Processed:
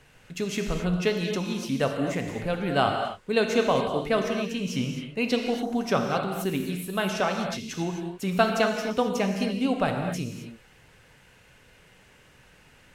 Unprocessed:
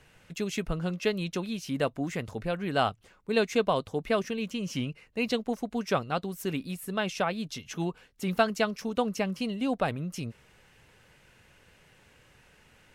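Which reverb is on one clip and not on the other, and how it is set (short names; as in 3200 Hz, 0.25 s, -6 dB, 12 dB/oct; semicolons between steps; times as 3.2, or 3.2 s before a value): non-linear reverb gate 0.29 s flat, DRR 3 dB; gain +2 dB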